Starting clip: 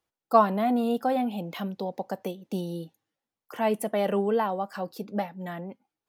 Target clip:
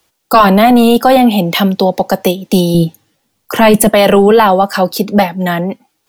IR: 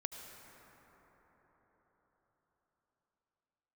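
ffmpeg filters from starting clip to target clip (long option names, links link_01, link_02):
-filter_complex "[0:a]asettb=1/sr,asplit=3[link_01][link_02][link_03];[link_01]atrim=end=2.744[link_04];[link_02]atrim=start=2.74:end=3.89,asetpts=PTS-STARTPTS,afade=type=in:duration=0.004:curve=qsin,afade=type=out:start_time=1.146:duration=0.004:curve=qsin,lowshelf=frequency=280:gain=10.5[link_05];[link_03]atrim=start=3.886[link_06];[link_04][link_05]acrossfade=duration=0.004:curve1=hsin:curve2=qsin[link_07];[link_07][link_06]acrossfade=duration=0.004:curve1=qsin:curve2=hsin,acrossover=split=210|720|2500[link_08][link_09][link_10][link_11];[link_11]acontrast=56[link_12];[link_08][link_09][link_10][link_12]amix=inputs=4:normalize=0,apsyclip=22.5dB,volume=-1.5dB"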